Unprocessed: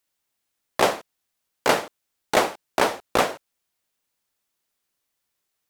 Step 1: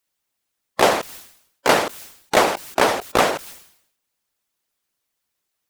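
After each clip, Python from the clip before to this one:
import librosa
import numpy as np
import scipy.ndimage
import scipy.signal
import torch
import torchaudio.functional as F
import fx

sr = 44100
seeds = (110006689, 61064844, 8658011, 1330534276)

y = fx.hpss(x, sr, part='percussive', gain_db=9)
y = fx.sustainer(y, sr, db_per_s=84.0)
y = F.gain(torch.from_numpy(y), -5.0).numpy()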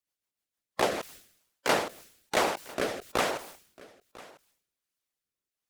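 y = fx.rotary_switch(x, sr, hz=6.7, then_hz=1.2, switch_at_s=0.37)
y = y + 10.0 ** (-21.0 / 20.0) * np.pad(y, (int(998 * sr / 1000.0), 0))[:len(y)]
y = F.gain(torch.from_numpy(y), -8.0).numpy()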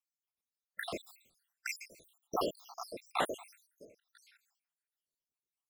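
y = fx.spec_dropout(x, sr, seeds[0], share_pct=78)
y = F.gain(torch.from_numpy(y), -2.5).numpy()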